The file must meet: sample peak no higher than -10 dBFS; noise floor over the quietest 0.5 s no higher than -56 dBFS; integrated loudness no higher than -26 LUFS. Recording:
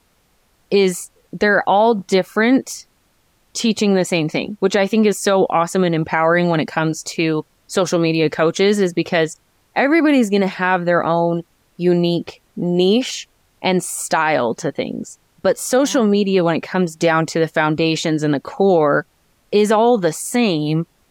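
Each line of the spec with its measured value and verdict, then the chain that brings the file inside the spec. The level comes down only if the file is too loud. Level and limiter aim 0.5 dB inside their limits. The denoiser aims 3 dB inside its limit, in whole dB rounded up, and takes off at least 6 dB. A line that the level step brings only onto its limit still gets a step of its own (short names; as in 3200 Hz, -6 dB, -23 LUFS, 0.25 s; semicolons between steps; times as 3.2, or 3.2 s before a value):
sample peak -5.5 dBFS: fail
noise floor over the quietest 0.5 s -60 dBFS: OK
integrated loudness -17.5 LUFS: fail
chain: gain -9 dB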